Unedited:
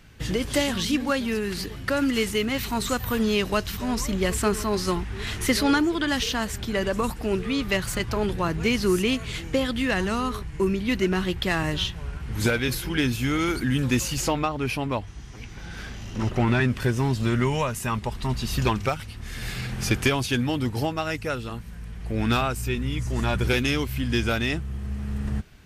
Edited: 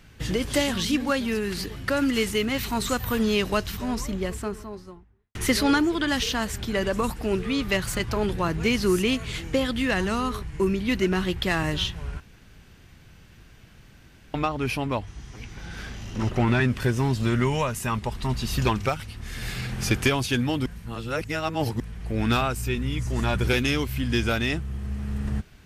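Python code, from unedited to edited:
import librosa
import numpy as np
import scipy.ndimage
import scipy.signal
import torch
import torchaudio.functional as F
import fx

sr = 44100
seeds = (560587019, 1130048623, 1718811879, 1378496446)

y = fx.studio_fade_out(x, sr, start_s=3.44, length_s=1.91)
y = fx.edit(y, sr, fx.room_tone_fill(start_s=12.2, length_s=2.14),
    fx.reverse_span(start_s=20.66, length_s=1.14), tone=tone)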